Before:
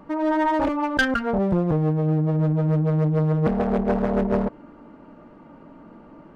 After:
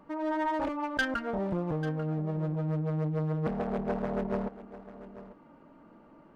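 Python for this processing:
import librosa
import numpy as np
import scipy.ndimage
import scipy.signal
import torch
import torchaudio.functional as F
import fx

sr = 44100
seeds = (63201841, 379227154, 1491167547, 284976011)

y = fx.low_shelf(x, sr, hz=320.0, db=-4.0)
y = y + 10.0 ** (-15.5 / 20.0) * np.pad(y, (int(842 * sr / 1000.0), 0))[:len(y)]
y = y * librosa.db_to_amplitude(-8.0)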